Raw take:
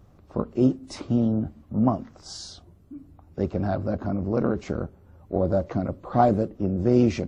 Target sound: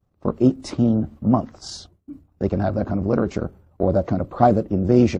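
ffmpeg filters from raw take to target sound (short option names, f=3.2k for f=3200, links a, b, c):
-af "atempo=1.4,agate=range=-33dB:threshold=-41dB:ratio=3:detection=peak,volume=4.5dB"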